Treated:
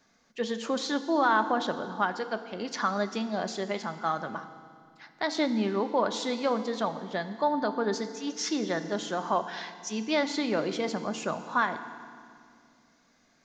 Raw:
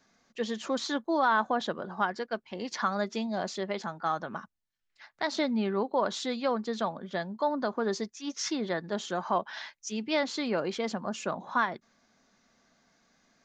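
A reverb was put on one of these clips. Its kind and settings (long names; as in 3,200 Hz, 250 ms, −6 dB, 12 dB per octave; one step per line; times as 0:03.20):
feedback delay network reverb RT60 2.1 s, low-frequency decay 1.4×, high-frequency decay 1×, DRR 9.5 dB
level +1 dB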